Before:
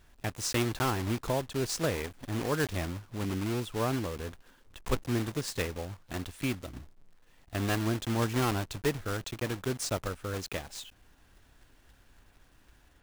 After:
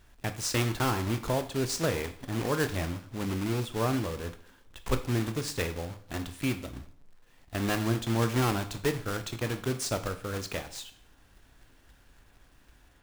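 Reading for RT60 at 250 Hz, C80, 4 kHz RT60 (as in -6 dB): 0.50 s, 17.0 dB, 0.50 s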